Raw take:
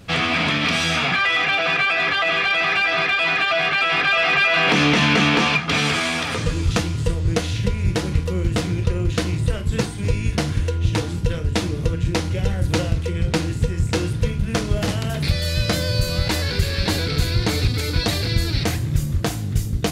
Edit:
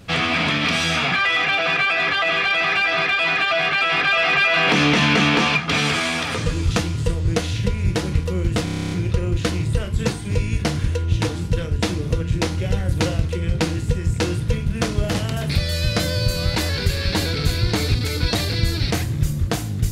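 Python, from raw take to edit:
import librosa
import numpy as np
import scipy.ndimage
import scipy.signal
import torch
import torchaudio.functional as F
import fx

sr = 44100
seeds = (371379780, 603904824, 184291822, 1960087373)

y = fx.edit(x, sr, fx.stutter(start_s=8.64, slice_s=0.03, count=10), tone=tone)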